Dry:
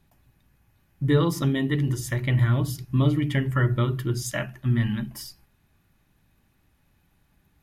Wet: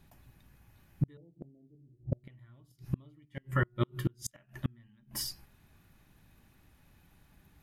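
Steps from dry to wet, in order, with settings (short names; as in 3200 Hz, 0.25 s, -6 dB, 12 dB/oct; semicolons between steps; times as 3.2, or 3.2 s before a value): 1.17–2.24 steep low-pass 770 Hz 96 dB/oct; 3.25–4.05 resonator 180 Hz, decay 0.15 s, harmonics all, mix 70%; flipped gate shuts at -20 dBFS, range -38 dB; gain +2.5 dB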